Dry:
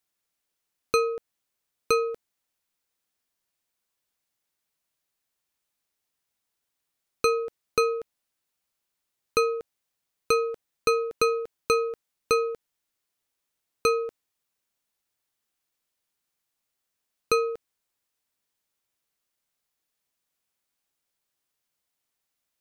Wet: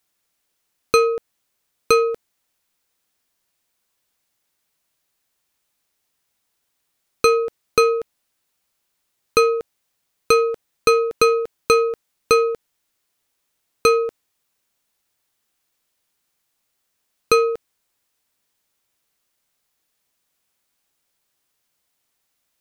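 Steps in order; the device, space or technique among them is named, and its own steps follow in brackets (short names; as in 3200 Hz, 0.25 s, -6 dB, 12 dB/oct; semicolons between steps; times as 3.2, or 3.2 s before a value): parallel distortion (in parallel at -12 dB: hard clip -23 dBFS, distortion -8 dB); on the sum: gain +6.5 dB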